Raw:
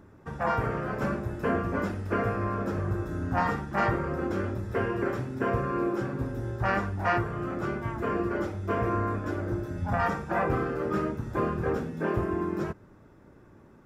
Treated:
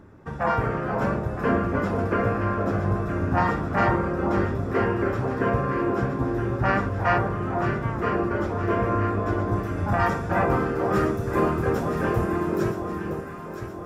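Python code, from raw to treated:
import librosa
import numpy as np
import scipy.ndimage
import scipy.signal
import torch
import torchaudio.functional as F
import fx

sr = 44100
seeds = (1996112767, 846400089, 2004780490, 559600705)

y = fx.high_shelf(x, sr, hz=6100.0, db=fx.steps((0.0, -6.0), (9.51, 3.0), (10.94, 11.0)))
y = fx.echo_alternate(y, sr, ms=484, hz=1100.0, feedback_pct=70, wet_db=-5.0)
y = y * 10.0 ** (4.0 / 20.0)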